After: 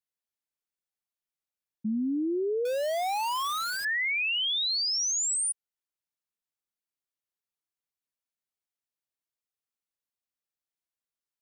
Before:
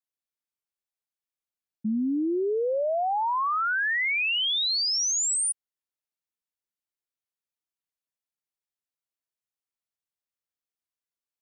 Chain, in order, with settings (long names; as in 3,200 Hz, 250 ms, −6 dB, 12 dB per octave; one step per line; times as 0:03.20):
0:02.65–0:03.85: gap after every zero crossing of 0.19 ms
level −2.5 dB